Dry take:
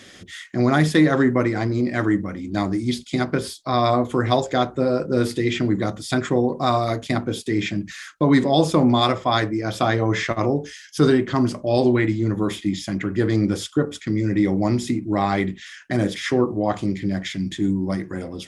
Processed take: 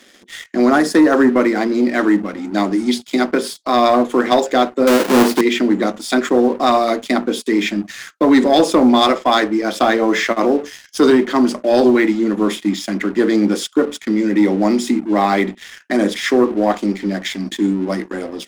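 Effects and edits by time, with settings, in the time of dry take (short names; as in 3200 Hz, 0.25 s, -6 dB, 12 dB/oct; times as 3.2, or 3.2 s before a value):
0.7–1.33 band shelf 2800 Hz -11.5 dB 1 oct
4.87–5.41 half-waves squared off
whole clip: elliptic high-pass 210 Hz; sample leveller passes 2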